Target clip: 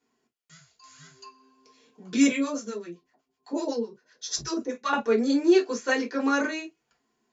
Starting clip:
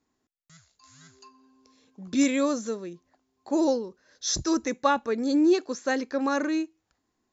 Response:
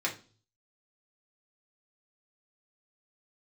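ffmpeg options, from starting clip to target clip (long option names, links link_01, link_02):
-filter_complex "[0:a]asettb=1/sr,asplit=3[link_01][link_02][link_03];[link_01]atrim=end=2.274[link_04];[link_02]atrim=start=2.27:end=4.93,asetpts=PTS-STARTPTS,afade=type=in:duration=0.004:curve=qsin,afade=type=out:start_time=2.656:duration=0.004:curve=qsin,acrossover=split=810[link_05][link_06];[link_05]aeval=exprs='val(0)*(1-1/2+1/2*cos(2*PI*7.9*n/s))':channel_layout=same[link_07];[link_06]aeval=exprs='val(0)*(1-1/2-1/2*cos(2*PI*7.9*n/s))':channel_layout=same[link_08];[link_07][link_08]amix=inputs=2:normalize=0[link_09];[link_03]atrim=start=4.926[link_10];[link_04][link_09]acrossfade=duration=0.004:curve1=hsin:curve2=qsin[link_11];[link_11][link_10]acrossfade=duration=0.004:curve1=qsin:curve2=hsin[link_12];[1:a]atrim=start_sample=2205,atrim=end_sample=3528,asetrate=57330,aresample=44100[link_13];[link_12][link_13]afir=irnorm=-1:irlink=0"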